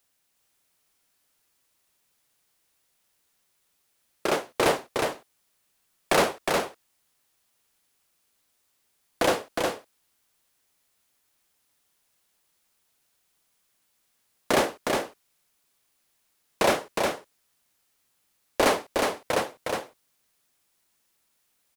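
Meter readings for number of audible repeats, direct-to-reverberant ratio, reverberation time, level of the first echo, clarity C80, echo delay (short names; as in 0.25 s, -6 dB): 1, none, none, -4.0 dB, none, 0.362 s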